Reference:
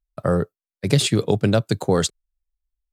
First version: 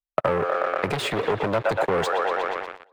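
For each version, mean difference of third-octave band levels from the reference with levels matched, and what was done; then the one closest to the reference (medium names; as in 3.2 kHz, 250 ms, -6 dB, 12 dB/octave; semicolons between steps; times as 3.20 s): 9.5 dB: feedback echo behind a band-pass 120 ms, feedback 71%, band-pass 1.2 kHz, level -7 dB; waveshaping leveller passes 5; compression 12:1, threshold -19 dBFS, peak gain reduction 13.5 dB; three-band isolator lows -14 dB, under 400 Hz, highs -18 dB, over 2.6 kHz; trim +2.5 dB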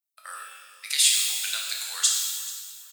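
23.0 dB: Bessel high-pass 2.5 kHz, order 4; treble shelf 8.8 kHz +10.5 dB; feedback delay 437 ms, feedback 33%, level -17.5 dB; pitch-shifted reverb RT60 1.5 s, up +12 st, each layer -8 dB, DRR -2 dB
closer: first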